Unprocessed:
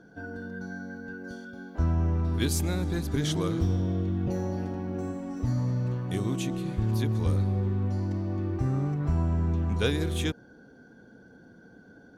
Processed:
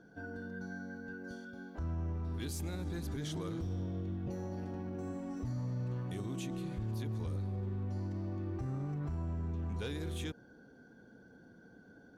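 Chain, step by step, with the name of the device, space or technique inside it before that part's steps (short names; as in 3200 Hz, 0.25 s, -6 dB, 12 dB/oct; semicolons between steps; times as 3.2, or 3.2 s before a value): soft clipper into limiter (soft clip -18 dBFS, distortion -23 dB; limiter -26.5 dBFS, peak gain reduction 7.5 dB); gain -5.5 dB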